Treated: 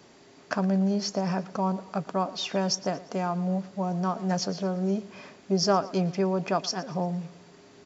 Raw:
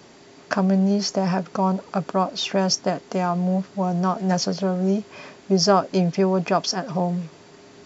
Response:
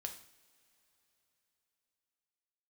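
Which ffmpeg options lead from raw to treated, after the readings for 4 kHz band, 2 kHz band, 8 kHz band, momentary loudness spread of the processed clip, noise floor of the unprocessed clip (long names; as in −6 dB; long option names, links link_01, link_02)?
−6.0 dB, −6.0 dB, can't be measured, 7 LU, −48 dBFS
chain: -af "aecho=1:1:115|230|345|460:0.112|0.0505|0.0227|0.0102,volume=-6dB"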